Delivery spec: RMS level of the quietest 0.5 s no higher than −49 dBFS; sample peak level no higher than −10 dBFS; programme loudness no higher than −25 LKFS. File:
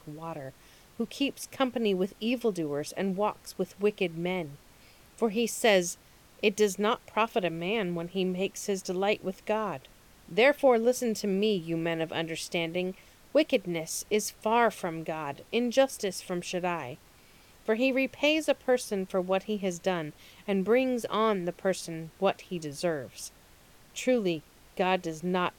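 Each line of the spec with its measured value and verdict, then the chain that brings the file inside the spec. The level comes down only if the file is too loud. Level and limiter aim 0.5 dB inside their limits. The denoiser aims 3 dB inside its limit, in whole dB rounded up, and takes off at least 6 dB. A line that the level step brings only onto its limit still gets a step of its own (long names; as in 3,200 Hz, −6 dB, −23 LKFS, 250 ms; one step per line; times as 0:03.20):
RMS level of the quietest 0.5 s −57 dBFS: in spec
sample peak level −10.5 dBFS: in spec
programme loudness −29.5 LKFS: in spec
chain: no processing needed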